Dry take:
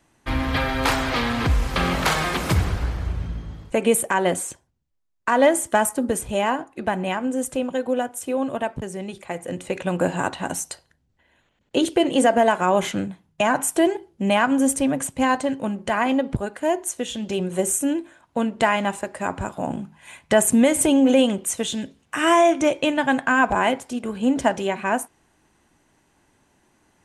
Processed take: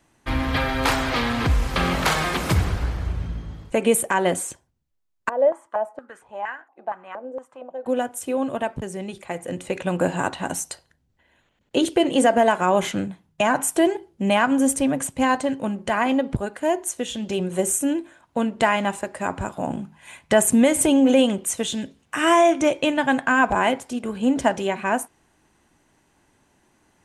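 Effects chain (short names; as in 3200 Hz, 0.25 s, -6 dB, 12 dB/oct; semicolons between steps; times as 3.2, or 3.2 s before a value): 5.29–7.86 stepped band-pass 4.3 Hz 560–1700 Hz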